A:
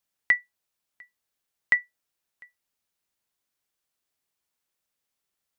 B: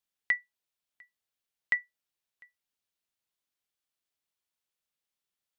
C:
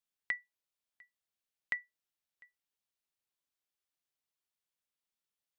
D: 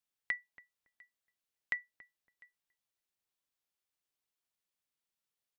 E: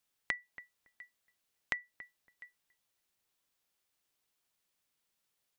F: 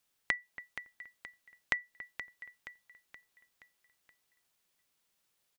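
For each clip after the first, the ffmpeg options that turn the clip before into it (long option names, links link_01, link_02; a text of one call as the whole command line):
ffmpeg -i in.wav -af "equalizer=frequency=3300:width_type=o:width=0.97:gain=4,volume=-7.5dB" out.wav
ffmpeg -i in.wav -af "acompressor=threshold=-26dB:ratio=6,volume=-4.5dB" out.wav
ffmpeg -i in.wav -filter_complex "[0:a]asplit=2[link_01][link_02];[link_02]adelay=280,lowpass=frequency=960:poles=1,volume=-16.5dB,asplit=2[link_03][link_04];[link_04]adelay=280,lowpass=frequency=960:poles=1,volume=0.21[link_05];[link_01][link_03][link_05]amix=inputs=3:normalize=0" out.wav
ffmpeg -i in.wav -af "acompressor=threshold=-40dB:ratio=6,volume=8dB" out.wav
ffmpeg -i in.wav -af "aecho=1:1:474|948|1422|1896|2370:0.251|0.126|0.0628|0.0314|0.0157,volume=3.5dB" out.wav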